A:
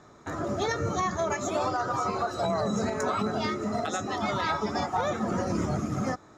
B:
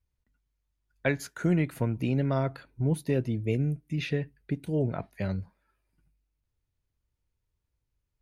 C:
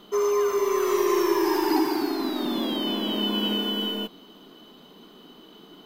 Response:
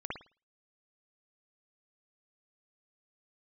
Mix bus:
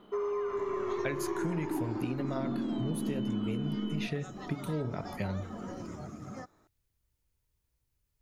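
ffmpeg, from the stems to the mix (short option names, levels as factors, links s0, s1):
-filter_complex "[0:a]adelay=300,volume=0.2[s0];[1:a]highshelf=f=6800:g=9,bandreject=f=45.32:t=h:w=4,bandreject=f=90.64:t=h:w=4,bandreject=f=135.96:t=h:w=4,bandreject=f=181.28:t=h:w=4,bandreject=f=226.6:t=h:w=4,bandreject=f=271.92:t=h:w=4,bandreject=f=317.24:t=h:w=4,bandreject=f=362.56:t=h:w=4,bandreject=f=407.88:t=h:w=4,bandreject=f=453.2:t=h:w=4,bandreject=f=498.52:t=h:w=4,bandreject=f=543.84:t=h:w=4,bandreject=f=589.16:t=h:w=4,bandreject=f=634.48:t=h:w=4,bandreject=f=679.8:t=h:w=4,bandreject=f=725.12:t=h:w=4,bandreject=f=770.44:t=h:w=4,bandreject=f=815.76:t=h:w=4,bandreject=f=861.08:t=h:w=4,bandreject=f=906.4:t=h:w=4,bandreject=f=951.72:t=h:w=4,bandreject=f=997.04:t=h:w=4,bandreject=f=1042.36:t=h:w=4,bandreject=f=1087.68:t=h:w=4,bandreject=f=1133:t=h:w=4,bandreject=f=1178.32:t=h:w=4,bandreject=f=1223.64:t=h:w=4,bandreject=f=1268.96:t=h:w=4,bandreject=f=1314.28:t=h:w=4,bandreject=f=1359.6:t=h:w=4,bandreject=f=1404.92:t=h:w=4,bandreject=f=1450.24:t=h:w=4,bandreject=f=1495.56:t=h:w=4,bandreject=f=1540.88:t=h:w=4,bandreject=f=1586.2:t=h:w=4,volume=1.19[s1];[2:a]lowpass=1900,asubboost=boost=10:cutoff=210,volume=0.562[s2];[s0][s1][s2]amix=inputs=3:normalize=0,acompressor=threshold=0.0316:ratio=6"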